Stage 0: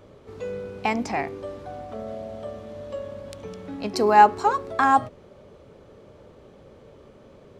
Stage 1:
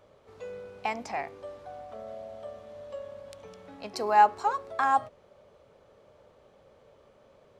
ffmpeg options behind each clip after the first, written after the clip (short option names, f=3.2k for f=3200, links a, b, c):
-af "lowshelf=f=450:t=q:w=1.5:g=-6.5,volume=-7dB"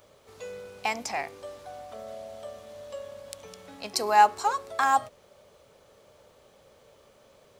-af "crystalizer=i=4:c=0"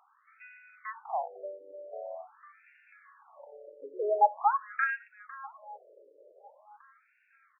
-af "aecho=1:1:503|1006|1509|2012|2515:0.1|0.058|0.0336|0.0195|0.0113,afftfilt=real='re*between(b*sr/1024,420*pow(2000/420,0.5+0.5*sin(2*PI*0.45*pts/sr))/1.41,420*pow(2000/420,0.5+0.5*sin(2*PI*0.45*pts/sr))*1.41)':imag='im*between(b*sr/1024,420*pow(2000/420,0.5+0.5*sin(2*PI*0.45*pts/sr))/1.41,420*pow(2000/420,0.5+0.5*sin(2*PI*0.45*pts/sr))*1.41)':win_size=1024:overlap=0.75,volume=1dB"